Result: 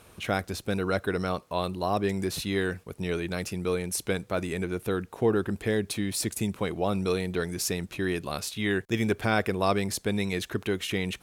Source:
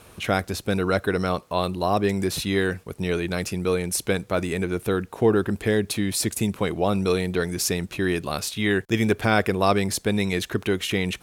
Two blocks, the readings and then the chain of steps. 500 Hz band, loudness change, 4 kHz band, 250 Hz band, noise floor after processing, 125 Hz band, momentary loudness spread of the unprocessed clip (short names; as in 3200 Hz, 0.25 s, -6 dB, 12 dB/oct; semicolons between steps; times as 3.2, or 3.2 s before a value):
-5.0 dB, -5.0 dB, -5.0 dB, -5.0 dB, -55 dBFS, -5.0 dB, 5 LU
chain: wow and flutter 21 cents; gain -5 dB